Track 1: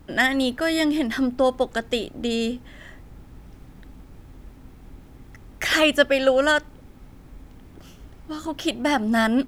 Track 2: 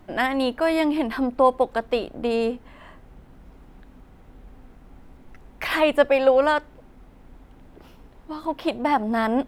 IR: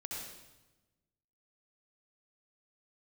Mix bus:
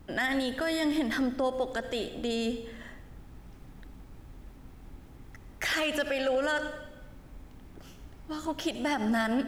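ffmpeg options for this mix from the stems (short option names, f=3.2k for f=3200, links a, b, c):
-filter_complex "[0:a]volume=8dB,asoftclip=hard,volume=-8dB,volume=-5dB,asplit=2[a][b];[b]volume=-10.5dB[c];[1:a]volume=-1,volume=-16dB[d];[2:a]atrim=start_sample=2205[e];[c][e]afir=irnorm=-1:irlink=0[f];[a][d][f]amix=inputs=3:normalize=0,alimiter=limit=-20dB:level=0:latency=1:release=63"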